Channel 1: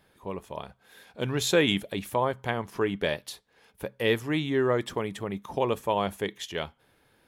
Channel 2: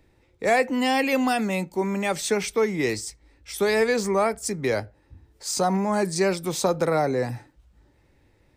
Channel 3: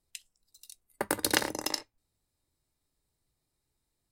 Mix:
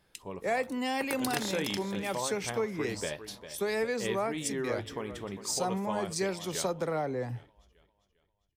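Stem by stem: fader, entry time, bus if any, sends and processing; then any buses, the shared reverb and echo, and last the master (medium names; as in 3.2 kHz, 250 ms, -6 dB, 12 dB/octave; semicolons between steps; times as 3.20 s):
-1.5 dB, 0.00 s, no send, echo send -14.5 dB, peaking EQ 5.3 kHz +5.5 dB 0.45 oct; flange 0.29 Hz, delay 5.6 ms, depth 8.2 ms, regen -65%
-4.5 dB, 0.00 s, no send, no echo send, three bands expanded up and down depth 70%
-2.5 dB, 0.00 s, no send, echo send -15.5 dB, none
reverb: none
echo: feedback delay 400 ms, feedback 41%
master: compression 2:1, threshold -32 dBFS, peak gain reduction 7.5 dB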